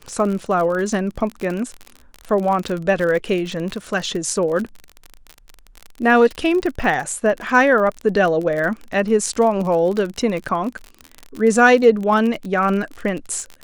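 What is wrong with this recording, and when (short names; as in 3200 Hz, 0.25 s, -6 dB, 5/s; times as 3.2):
crackle 41/s -24 dBFS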